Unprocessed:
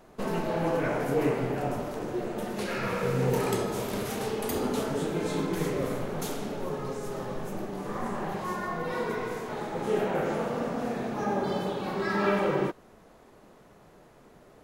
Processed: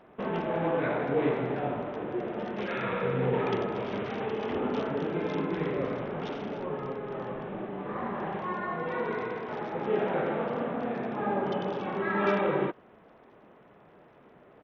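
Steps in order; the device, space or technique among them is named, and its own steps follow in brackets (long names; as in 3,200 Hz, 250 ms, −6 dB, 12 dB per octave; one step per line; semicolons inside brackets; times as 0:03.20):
Bluetooth headset (high-pass filter 140 Hz 6 dB per octave; downsampling to 8,000 Hz; SBC 64 kbit/s 48,000 Hz)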